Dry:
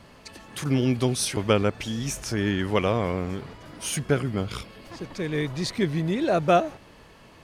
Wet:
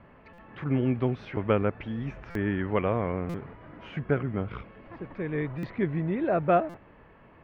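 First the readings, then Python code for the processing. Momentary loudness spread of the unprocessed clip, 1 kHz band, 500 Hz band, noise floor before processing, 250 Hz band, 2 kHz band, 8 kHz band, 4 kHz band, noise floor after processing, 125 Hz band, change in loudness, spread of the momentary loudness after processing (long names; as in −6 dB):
15 LU, −3.0 dB, −3.0 dB, −51 dBFS, −3.0 dB, −5.0 dB, below −35 dB, −18.0 dB, −54 dBFS, −3.0 dB, −3.5 dB, 15 LU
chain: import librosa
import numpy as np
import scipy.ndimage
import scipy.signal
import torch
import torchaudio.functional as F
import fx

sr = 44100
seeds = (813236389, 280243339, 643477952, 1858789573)

y = scipy.signal.sosfilt(scipy.signal.butter(4, 2200.0, 'lowpass', fs=sr, output='sos'), x)
y = fx.buffer_glitch(y, sr, at_s=(0.33, 2.3, 3.29, 5.58, 6.69), block=256, repeats=8)
y = y * librosa.db_to_amplitude(-3.0)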